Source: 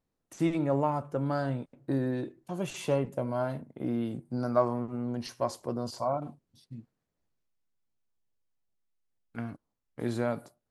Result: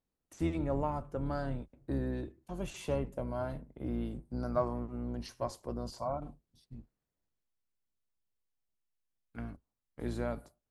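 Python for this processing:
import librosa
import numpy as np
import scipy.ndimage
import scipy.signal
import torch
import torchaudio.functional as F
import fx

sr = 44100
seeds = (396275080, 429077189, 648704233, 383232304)

y = fx.octave_divider(x, sr, octaves=2, level_db=-2.0)
y = y * 10.0 ** (-6.0 / 20.0)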